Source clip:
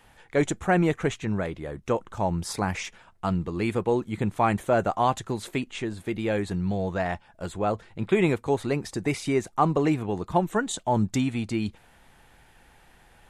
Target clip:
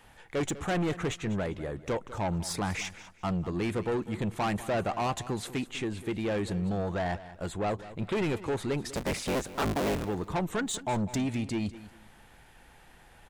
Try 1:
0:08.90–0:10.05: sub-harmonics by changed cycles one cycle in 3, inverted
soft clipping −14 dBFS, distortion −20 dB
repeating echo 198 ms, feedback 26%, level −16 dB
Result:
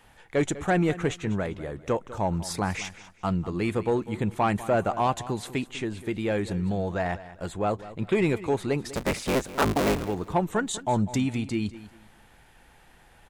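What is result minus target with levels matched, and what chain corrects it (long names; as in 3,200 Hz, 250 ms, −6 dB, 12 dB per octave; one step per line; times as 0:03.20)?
soft clipping: distortion −12 dB
0:08.90–0:10.05: sub-harmonics by changed cycles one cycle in 3, inverted
soft clipping −25.5 dBFS, distortion −8 dB
repeating echo 198 ms, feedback 26%, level −16 dB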